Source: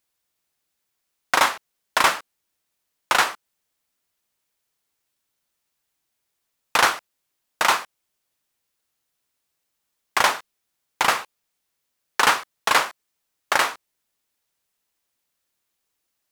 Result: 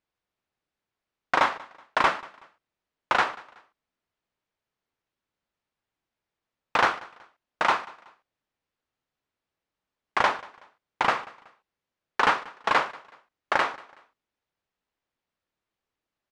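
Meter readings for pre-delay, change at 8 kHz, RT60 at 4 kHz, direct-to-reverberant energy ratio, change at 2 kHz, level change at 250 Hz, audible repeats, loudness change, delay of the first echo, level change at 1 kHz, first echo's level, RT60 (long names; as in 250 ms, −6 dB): no reverb audible, −18.0 dB, no reverb audible, no reverb audible, −4.5 dB, −0.5 dB, 2, −4.5 dB, 187 ms, −2.5 dB, −22.0 dB, no reverb audible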